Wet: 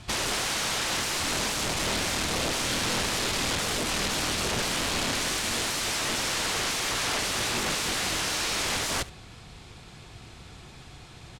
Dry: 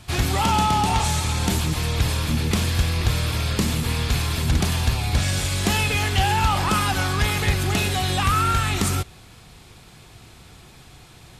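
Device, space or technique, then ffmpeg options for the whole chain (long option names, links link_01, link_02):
overflowing digital effects unit: -filter_complex "[0:a]asettb=1/sr,asplit=3[link_01][link_02][link_03];[link_01]atrim=end=1.954[link_04];[link_02]atrim=start=1.95:end=2.39,asetpts=PTS-STARTPTS,afade=type=in:duration=0.004:curve=qsin,afade=type=out:start_time=0.436:duration=0.004:curve=qsin,lowshelf=frequency=110:gain=-2.5[link_05];[link_03]atrim=start=2.386[link_06];[link_04][link_05]acrossfade=duration=0.004:curve1=hsin:curve2=qsin[link_07];[link_07][link_06]acrossfade=duration=0.004:curve1=qsin:curve2=hsin,aeval=exprs='(mod(12.6*val(0)+1,2)-1)/12.6':channel_layout=same,lowpass=8000,aecho=1:1:71:0.1"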